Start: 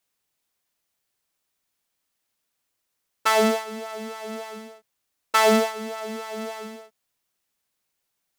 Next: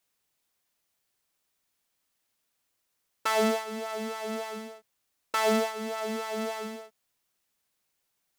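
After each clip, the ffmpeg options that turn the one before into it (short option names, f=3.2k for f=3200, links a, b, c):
-af "alimiter=limit=-14dB:level=0:latency=1:release=474"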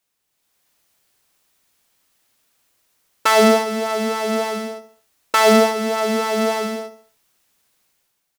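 -filter_complex "[0:a]dynaudnorm=f=140:g=7:m=10dB,asplit=2[a][b];[b]aecho=0:1:68|136|204|272:0.224|0.0963|0.0414|0.0178[c];[a][c]amix=inputs=2:normalize=0,volume=2.5dB"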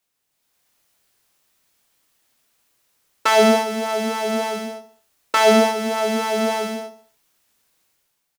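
-filter_complex "[0:a]asplit=2[a][b];[b]adelay=26,volume=-8dB[c];[a][c]amix=inputs=2:normalize=0,acrossover=split=130|6700[d][e][f];[f]asoftclip=type=hard:threshold=-27.5dB[g];[d][e][g]amix=inputs=3:normalize=0,volume=-1.5dB"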